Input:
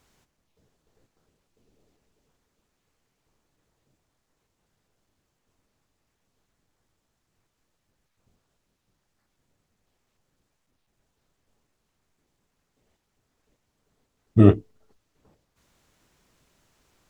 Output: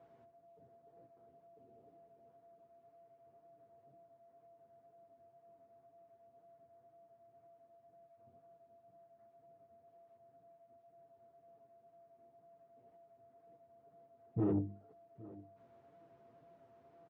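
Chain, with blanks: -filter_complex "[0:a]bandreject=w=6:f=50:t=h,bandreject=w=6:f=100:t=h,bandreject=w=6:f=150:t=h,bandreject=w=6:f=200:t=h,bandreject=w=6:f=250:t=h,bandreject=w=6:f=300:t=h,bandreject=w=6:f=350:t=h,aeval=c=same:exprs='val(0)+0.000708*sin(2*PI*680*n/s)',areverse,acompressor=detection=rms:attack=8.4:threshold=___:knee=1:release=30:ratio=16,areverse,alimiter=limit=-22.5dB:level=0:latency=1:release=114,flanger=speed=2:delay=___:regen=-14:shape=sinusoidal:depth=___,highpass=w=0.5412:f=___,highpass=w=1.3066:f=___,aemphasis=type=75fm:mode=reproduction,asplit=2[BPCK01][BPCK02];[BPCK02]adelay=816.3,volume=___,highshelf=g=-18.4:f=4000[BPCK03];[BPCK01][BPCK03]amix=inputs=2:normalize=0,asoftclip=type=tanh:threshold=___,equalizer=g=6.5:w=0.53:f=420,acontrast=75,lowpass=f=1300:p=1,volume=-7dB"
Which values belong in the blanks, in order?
-24dB, 5.9, 2.7, 75, 75, -23dB, -31dB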